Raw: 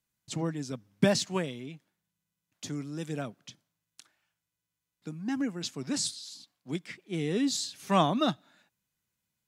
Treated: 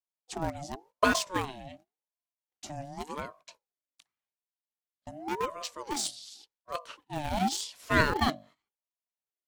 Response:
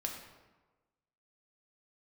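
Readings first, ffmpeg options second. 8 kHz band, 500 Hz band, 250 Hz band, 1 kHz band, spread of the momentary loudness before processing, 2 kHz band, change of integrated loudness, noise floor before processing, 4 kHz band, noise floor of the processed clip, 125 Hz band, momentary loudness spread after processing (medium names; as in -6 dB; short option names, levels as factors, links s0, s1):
-1.0 dB, -2.0 dB, -5.0 dB, +3.0 dB, 18 LU, +8.0 dB, -0.5 dB, under -85 dBFS, -1.5 dB, under -85 dBFS, -4.0 dB, 20 LU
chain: -filter_complex "[0:a]bandreject=f=50:t=h:w=6,bandreject=f=100:t=h:w=6,bandreject=f=150:t=h:w=6,bandreject=f=200:t=h:w=6,bandreject=f=250:t=h:w=6,bandreject=f=300:t=h:w=6,bandreject=f=350:t=h:w=6,agate=range=0.141:threshold=0.00251:ratio=16:detection=peak,asplit=2[s0][s1];[s1]aeval=exprs='val(0)*gte(abs(val(0)),0.0531)':c=same,volume=0.501[s2];[s0][s2]amix=inputs=2:normalize=0,aeval=exprs='val(0)*sin(2*PI*640*n/s+640*0.35/0.89*sin(2*PI*0.89*n/s))':c=same"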